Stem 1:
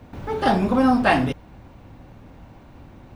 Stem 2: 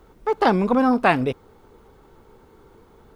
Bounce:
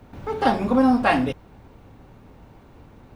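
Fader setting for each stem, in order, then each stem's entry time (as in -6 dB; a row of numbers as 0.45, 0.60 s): -3.5, -5.5 dB; 0.00, 0.00 s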